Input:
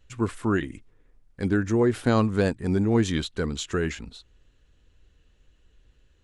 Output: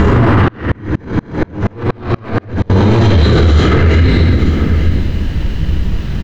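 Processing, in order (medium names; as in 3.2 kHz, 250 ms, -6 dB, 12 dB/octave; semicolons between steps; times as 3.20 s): reverse spectral sustain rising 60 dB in 2.96 s; peaking EQ 86 Hz +12.5 dB 0.81 oct; comb 1 ms, depth 38%; upward compressor, threshold -31 dBFS; waveshaping leveller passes 5; added noise blue -34 dBFS; distance through air 220 m; delay 883 ms -21 dB; reverberation RT60 1.8 s, pre-delay 3 ms, DRR -5.5 dB; loudness maximiser +4 dB; 0.48–2.70 s: sawtooth tremolo in dB swelling 4.2 Hz, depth 34 dB; trim -1 dB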